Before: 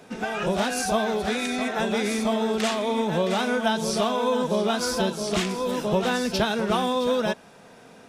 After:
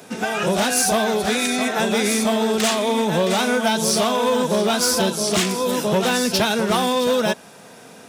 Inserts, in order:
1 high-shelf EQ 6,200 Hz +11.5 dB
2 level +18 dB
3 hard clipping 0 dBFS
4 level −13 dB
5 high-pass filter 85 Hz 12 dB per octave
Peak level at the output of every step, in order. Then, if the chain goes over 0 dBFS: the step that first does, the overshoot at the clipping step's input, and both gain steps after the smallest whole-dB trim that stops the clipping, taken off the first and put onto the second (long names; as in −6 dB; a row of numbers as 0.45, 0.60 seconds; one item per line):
−9.0, +9.0, 0.0, −13.0, −8.5 dBFS
step 2, 9.0 dB
step 2 +9 dB, step 4 −4 dB